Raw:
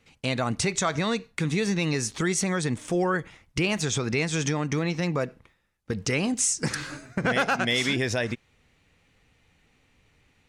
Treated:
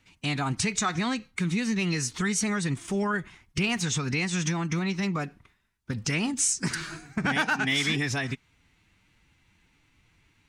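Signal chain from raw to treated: bell 490 Hz -14 dB 0.44 oct; formant-preserving pitch shift +2 st

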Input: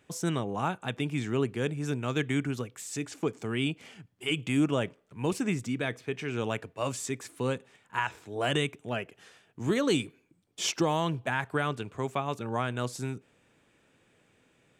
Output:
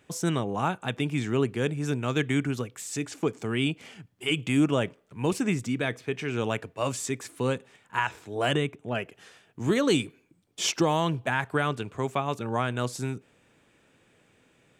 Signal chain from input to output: 8.54–8.95 high shelf 2200 Hz -10 dB; gain +3 dB

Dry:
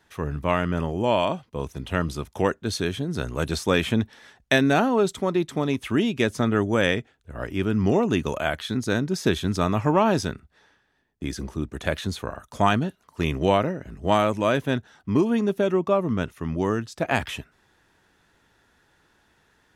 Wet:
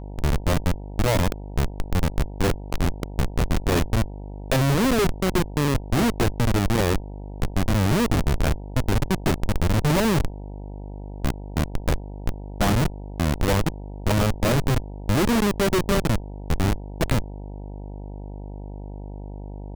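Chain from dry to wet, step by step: bell 140 Hz +6.5 dB 0.35 oct; LFO notch saw up 1.7 Hz 670–3300 Hz; Schmitt trigger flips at -21 dBFS; buzz 50 Hz, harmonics 19, -41 dBFS -6 dB/oct; gain +6 dB

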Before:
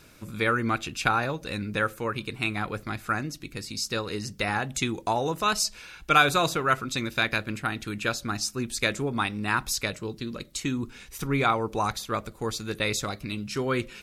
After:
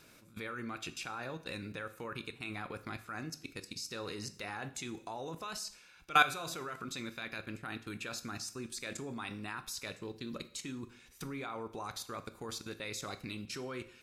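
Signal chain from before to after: low shelf 91 Hz -11.5 dB; level quantiser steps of 19 dB; plate-style reverb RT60 0.59 s, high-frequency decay 0.95×, DRR 10.5 dB; gain -3.5 dB

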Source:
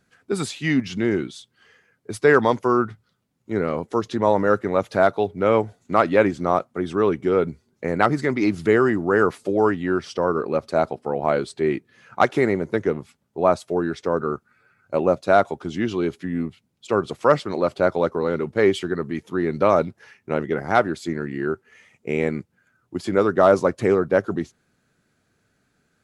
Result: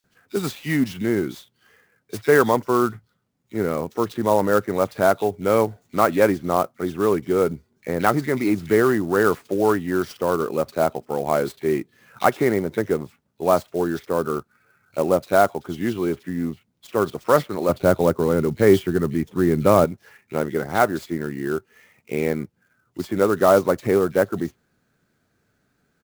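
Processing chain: 17.65–19.81 low shelf 250 Hz +10.5 dB; bands offset in time highs, lows 40 ms, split 2800 Hz; clock jitter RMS 0.022 ms

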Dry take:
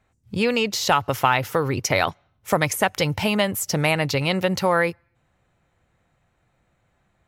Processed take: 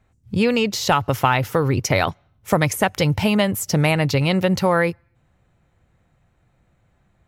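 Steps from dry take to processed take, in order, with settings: low shelf 310 Hz +7.5 dB

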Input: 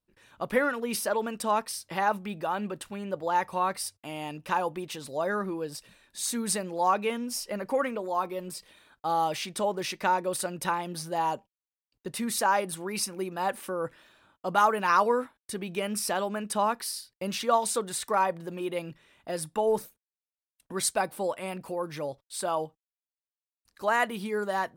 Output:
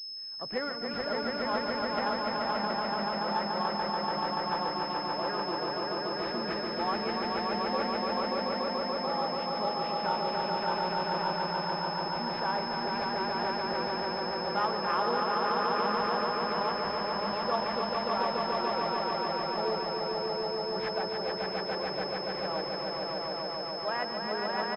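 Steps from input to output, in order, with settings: harmoniser -4 st -17 dB, +7 st -15 dB; swelling echo 0.144 s, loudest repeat 5, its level -3 dB; pulse-width modulation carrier 5200 Hz; gain -8.5 dB

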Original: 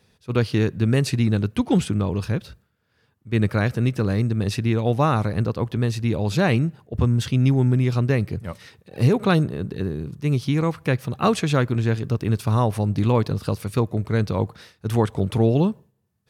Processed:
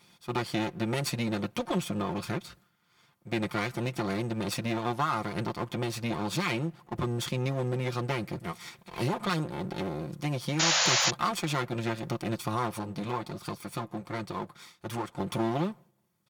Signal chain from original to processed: minimum comb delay 0.88 ms; HPF 310 Hz 6 dB/oct; comb 5.7 ms, depth 55%; compressor 2:1, threshold -38 dBFS, peak gain reduction 12 dB; 10.59–11.11 painted sound noise 480–7200 Hz -29 dBFS; 12.79–15.2 flange 1.4 Hz, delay 0.4 ms, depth 7.7 ms, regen -54%; gain +4 dB

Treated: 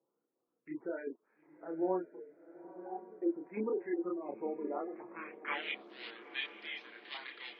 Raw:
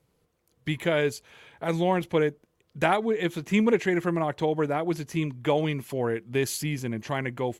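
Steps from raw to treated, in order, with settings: switching dead time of 0.15 ms; LFO band-pass saw up 2.8 Hz 860–2300 Hz; crackle 450/s -66 dBFS; band-pass sweep 320 Hz -> 3600 Hz, 4.73–5.68; dynamic EQ 330 Hz, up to +3 dB, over -58 dBFS, Q 1.3; spectral gate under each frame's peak -20 dB strong; chorus voices 4, 0.66 Hz, delay 30 ms, depth 2.9 ms; 2.06–3.22 octave resonator F#, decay 0.18 s; diffused feedback echo 0.919 s, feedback 53%, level -14 dB; gain +12 dB

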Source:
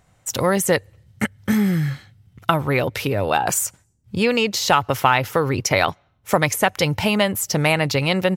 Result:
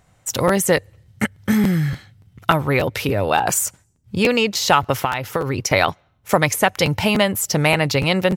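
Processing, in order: 4.98–5.71 compressor 6:1, threshold -19 dBFS, peak gain reduction 9 dB; crackling interface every 0.29 s, samples 512, repeat, from 0.47; gain +1.5 dB

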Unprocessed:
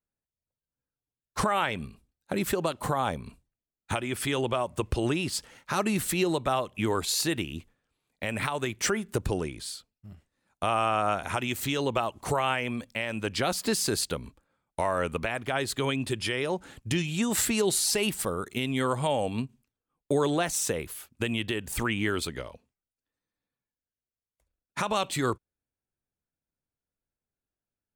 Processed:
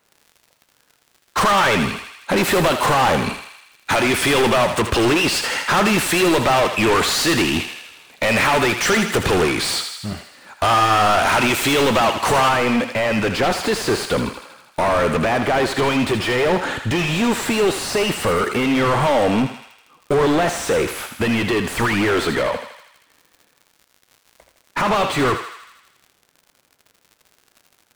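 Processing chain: overdrive pedal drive 35 dB, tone 2900 Hz, clips at -14.5 dBFS, from 12.49 s tone 1200 Hz; crackle 69/s -41 dBFS; thinning echo 80 ms, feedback 66%, high-pass 770 Hz, level -7 dB; gain +5 dB

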